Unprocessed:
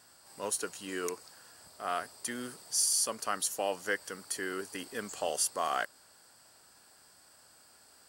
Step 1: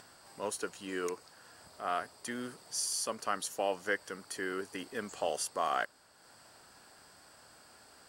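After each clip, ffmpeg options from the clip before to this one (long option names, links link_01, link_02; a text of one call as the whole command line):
ffmpeg -i in.wav -af "acompressor=mode=upward:threshold=-47dB:ratio=2.5,aemphasis=mode=reproduction:type=cd" out.wav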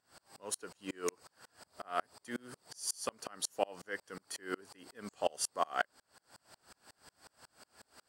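ffmpeg -i in.wav -af "aeval=exprs='val(0)*pow(10,-35*if(lt(mod(-5.5*n/s,1),2*abs(-5.5)/1000),1-mod(-5.5*n/s,1)/(2*abs(-5.5)/1000),(mod(-5.5*n/s,1)-2*abs(-5.5)/1000)/(1-2*abs(-5.5)/1000))/20)':channel_layout=same,volume=5.5dB" out.wav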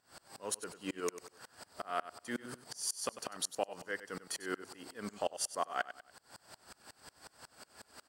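ffmpeg -i in.wav -af "aecho=1:1:96|192|288:0.188|0.0527|0.0148,acompressor=threshold=-41dB:ratio=2,volume=4.5dB" out.wav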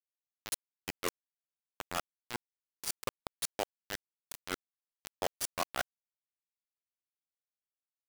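ffmpeg -i in.wav -af "acrusher=bits=4:mix=0:aa=0.000001" out.wav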